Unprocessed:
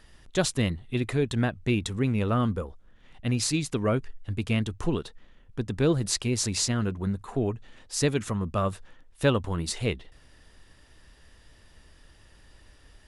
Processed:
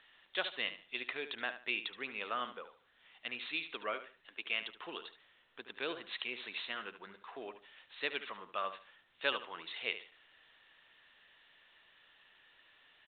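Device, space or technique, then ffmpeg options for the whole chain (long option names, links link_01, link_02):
telephone: -filter_complex "[0:a]aderivative,asettb=1/sr,asplit=3[link_01][link_02][link_03];[link_01]atrim=end=3.944[link_04];[link_02]atrim=start=3.94:end=4.62,asetpts=PTS-STARTPTS,afade=type=in:duration=0.004:curve=qsin,afade=type=out:start_time=0.676:duration=0.004:curve=qsin,highpass=280[link_05];[link_03]atrim=start=4.616[link_06];[link_04][link_05]acrossfade=duration=0.004:curve1=hsin:curve2=qsin[link_07];[link_07][link_06]acrossfade=duration=0.004:curve1=qsin:curve2=hsin,highpass=350,lowpass=3300,asplit=2[link_08][link_09];[link_09]adelay=73,lowpass=frequency=4900:poles=1,volume=-11dB,asplit=2[link_10][link_11];[link_11]adelay=73,lowpass=frequency=4900:poles=1,volume=0.26,asplit=2[link_12][link_13];[link_13]adelay=73,lowpass=frequency=4900:poles=1,volume=0.26[link_14];[link_08][link_10][link_12][link_14]amix=inputs=4:normalize=0,volume=9dB" -ar 8000 -c:a pcm_alaw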